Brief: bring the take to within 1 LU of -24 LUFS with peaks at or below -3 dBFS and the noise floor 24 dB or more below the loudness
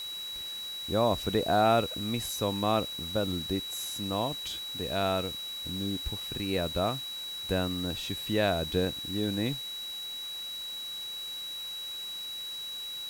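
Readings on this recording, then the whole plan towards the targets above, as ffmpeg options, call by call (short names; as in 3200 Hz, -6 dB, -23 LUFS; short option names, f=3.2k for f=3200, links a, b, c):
steady tone 3900 Hz; tone level -36 dBFS; noise floor -39 dBFS; noise floor target -55 dBFS; loudness -31.0 LUFS; peak -13.0 dBFS; loudness target -24.0 LUFS
-> -af "bandreject=f=3.9k:w=30"
-af "afftdn=nr=16:nf=-39"
-af "volume=7dB"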